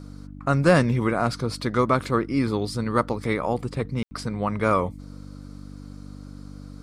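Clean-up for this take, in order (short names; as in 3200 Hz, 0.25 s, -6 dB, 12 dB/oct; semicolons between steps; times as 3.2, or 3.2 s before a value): clip repair -7.5 dBFS; de-hum 48.8 Hz, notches 6; room tone fill 4.03–4.11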